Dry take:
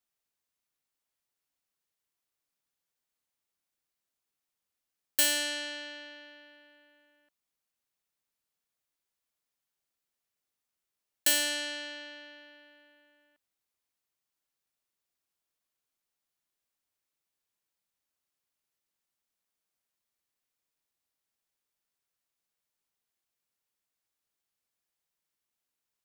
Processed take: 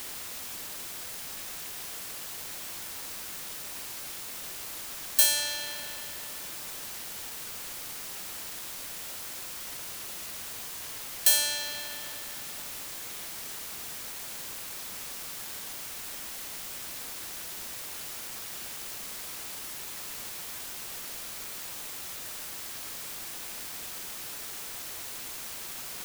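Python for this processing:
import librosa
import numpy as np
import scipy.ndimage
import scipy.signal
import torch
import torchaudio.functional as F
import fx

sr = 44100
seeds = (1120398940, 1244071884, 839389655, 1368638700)

p1 = scipy.signal.sosfilt(scipy.signal.butter(2, 780.0, 'highpass', fs=sr, output='sos'), x)
p2 = fx.peak_eq(p1, sr, hz=1800.0, db=-10.5, octaves=1.9)
p3 = p2 + 0.65 * np.pad(p2, (int(2.2 * sr / 1000.0), 0))[:len(p2)]
p4 = fx.quant_dither(p3, sr, seeds[0], bits=6, dither='triangular')
y = p3 + F.gain(torch.from_numpy(p4), -3.5).numpy()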